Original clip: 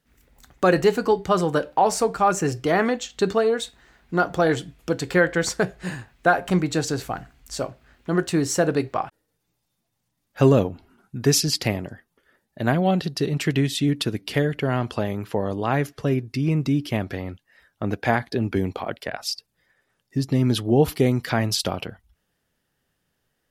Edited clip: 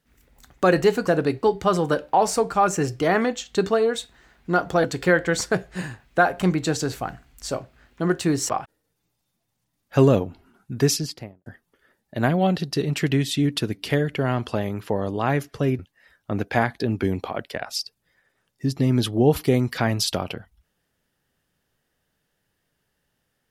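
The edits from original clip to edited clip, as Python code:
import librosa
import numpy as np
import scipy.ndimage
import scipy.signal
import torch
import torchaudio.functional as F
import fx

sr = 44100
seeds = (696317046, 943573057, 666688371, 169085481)

y = fx.studio_fade_out(x, sr, start_s=11.2, length_s=0.7)
y = fx.edit(y, sr, fx.cut(start_s=4.48, length_s=0.44),
    fx.move(start_s=8.57, length_s=0.36, to_s=1.07),
    fx.cut(start_s=16.23, length_s=1.08), tone=tone)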